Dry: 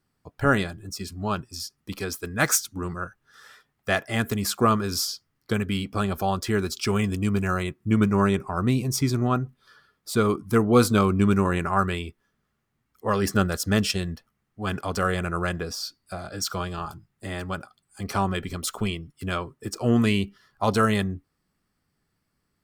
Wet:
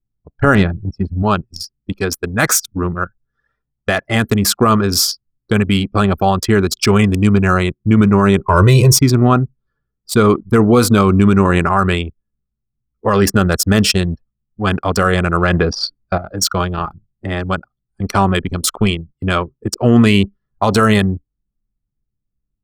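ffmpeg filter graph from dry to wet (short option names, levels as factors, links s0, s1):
-filter_complex "[0:a]asettb=1/sr,asplit=3[s0][s1][s2];[s0]atrim=end=0.554[s3];[s1]atrim=start=0.55:end=1.23,asetpts=PTS-STARTPTS,afade=t=in:d=0.004:c=qsin,afade=t=out:st=0.676:d=0.004:c=qsin,bass=f=250:g=6,treble=f=4000:g=-11,asoftclip=type=hard:threshold=0.141[s4];[s2]atrim=start=1.226[s5];[s3][s4]acrossfade=d=0.004:c1=hsin:c2=qsin[s6];[s6][s5]acrossfade=d=0.004:c1=qsin:c2=hsin,asettb=1/sr,asplit=3[s7][s8][s9];[s7]atrim=end=8.484[s10];[s8]atrim=start=8.48:end=8.98,asetpts=PTS-STARTPTS,afade=t=in:d=0.004:c=qsin,afade=t=out:st=0.496:d=0.004:c=qsin,aecho=1:1:2:0.84,atrim=end_sample=22050,acontrast=68[s11];[s9]atrim=start=8.976[s12];[s10][s11]acrossfade=d=0.004:c1=hsin:c2=qsin[s13];[s13][s12]acrossfade=d=0.004:c1=qsin:c2=hsin,asettb=1/sr,asplit=3[s14][s15][s16];[s14]atrim=end=15.434[s17];[s15]atrim=start=15.43:end=16.18,asetpts=PTS-STARTPTS,afade=t=in:d=0.004:c=qsin,afade=t=out:st=0.746:d=0.004:c=qsin,lowpass=4400,acontrast=34[s18];[s16]atrim=start=16.176[s19];[s17][s18]acrossfade=d=0.004:c1=hsin:c2=qsin[s20];[s20][s19]acrossfade=d=0.004:c1=qsin:c2=hsin,anlmdn=25.1,alimiter=level_in=4.73:limit=0.891:release=50:level=0:latency=1,volume=0.891"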